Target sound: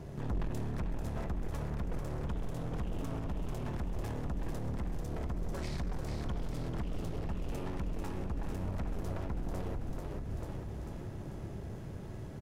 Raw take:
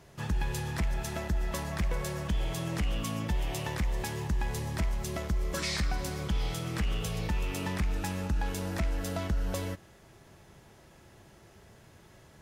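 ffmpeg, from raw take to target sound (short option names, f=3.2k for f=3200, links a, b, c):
-filter_complex "[0:a]tiltshelf=f=760:g=8.5,aeval=exprs='0.211*(cos(1*acos(clip(val(0)/0.211,-1,1)))-cos(1*PI/2))+0.0596*(cos(6*acos(clip(val(0)/0.211,-1,1)))-cos(6*PI/2))':c=same,asoftclip=type=tanh:threshold=-22.5dB,acompressor=threshold=-33dB:ratio=6,asplit=9[a][b][c][d][e][f][g][h][i];[b]adelay=442,afreqshift=-34,volume=-5.5dB[j];[c]adelay=884,afreqshift=-68,volume=-10.4dB[k];[d]adelay=1326,afreqshift=-102,volume=-15.3dB[l];[e]adelay=1768,afreqshift=-136,volume=-20.1dB[m];[f]adelay=2210,afreqshift=-170,volume=-25dB[n];[g]adelay=2652,afreqshift=-204,volume=-29.9dB[o];[h]adelay=3094,afreqshift=-238,volume=-34.8dB[p];[i]adelay=3536,afreqshift=-272,volume=-39.7dB[q];[a][j][k][l][m][n][o][p][q]amix=inputs=9:normalize=0,alimiter=level_in=9.5dB:limit=-24dB:level=0:latency=1:release=178,volume=-9.5dB,volume=5dB"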